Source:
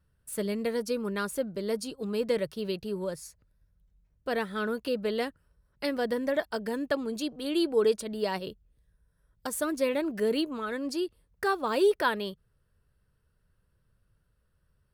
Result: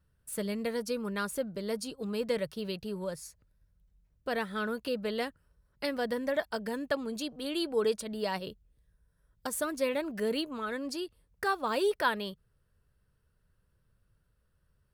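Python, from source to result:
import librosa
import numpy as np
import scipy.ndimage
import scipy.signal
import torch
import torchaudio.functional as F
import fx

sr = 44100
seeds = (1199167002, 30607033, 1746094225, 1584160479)

y = fx.dynamic_eq(x, sr, hz=350.0, q=1.9, threshold_db=-40.0, ratio=4.0, max_db=-6)
y = F.gain(torch.from_numpy(y), -1.0).numpy()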